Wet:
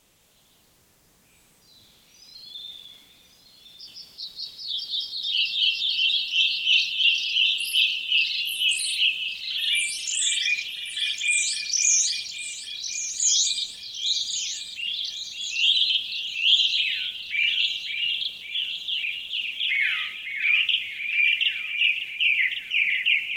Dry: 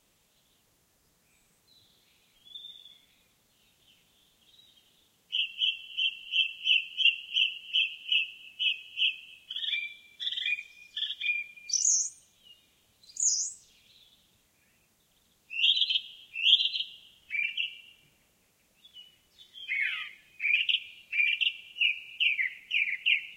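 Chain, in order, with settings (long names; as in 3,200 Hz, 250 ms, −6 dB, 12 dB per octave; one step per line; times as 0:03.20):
hum removal 70.43 Hz, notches 27
in parallel at +2 dB: brickwall limiter −19.5 dBFS, peak gain reduction 10.5 dB
on the sum: delay with pitch and tempo change per echo 209 ms, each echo +3 semitones, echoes 3, each echo −6 dB
delay that swaps between a low-pass and a high-pass 553 ms, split 2,500 Hz, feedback 64%, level −7 dB
transient designer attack −3 dB, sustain +3 dB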